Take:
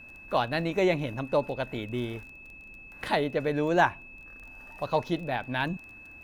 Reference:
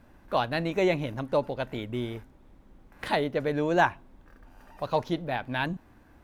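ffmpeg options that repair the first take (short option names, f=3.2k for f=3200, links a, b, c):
-af "adeclick=t=4,bandreject=f=2.6k:w=30"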